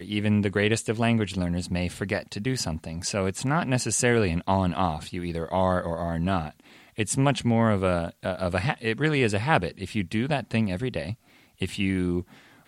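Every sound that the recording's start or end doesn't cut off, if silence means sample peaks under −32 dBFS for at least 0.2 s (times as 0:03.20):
0:06.98–0:11.13
0:11.62–0:12.22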